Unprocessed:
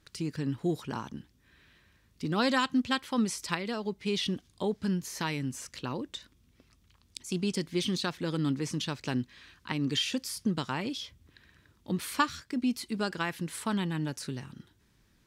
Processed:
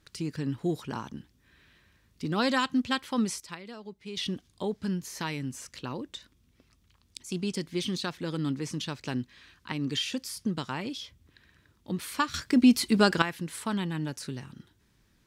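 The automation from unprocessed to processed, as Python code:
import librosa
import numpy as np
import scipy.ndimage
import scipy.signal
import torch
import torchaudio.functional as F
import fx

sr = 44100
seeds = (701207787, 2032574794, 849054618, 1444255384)

y = fx.gain(x, sr, db=fx.steps((0.0, 0.5), (3.4, -9.5), (4.17, -1.0), (12.34, 10.0), (13.22, 0.0)))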